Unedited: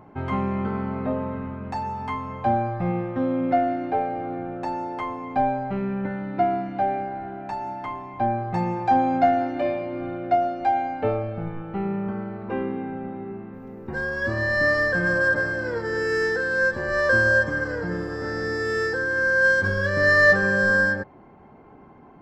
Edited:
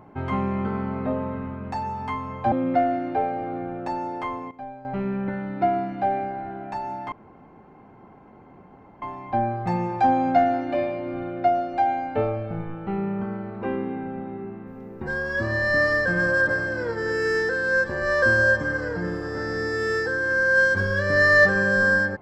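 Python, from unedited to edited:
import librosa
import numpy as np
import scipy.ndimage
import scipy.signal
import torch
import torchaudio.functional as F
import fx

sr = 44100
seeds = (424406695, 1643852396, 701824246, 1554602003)

y = fx.edit(x, sr, fx.cut(start_s=2.52, length_s=0.77),
    fx.fade_down_up(start_s=5.03, length_s=0.84, db=-15.5, fade_s=0.25, curve='log'),
    fx.insert_room_tone(at_s=7.89, length_s=1.9), tone=tone)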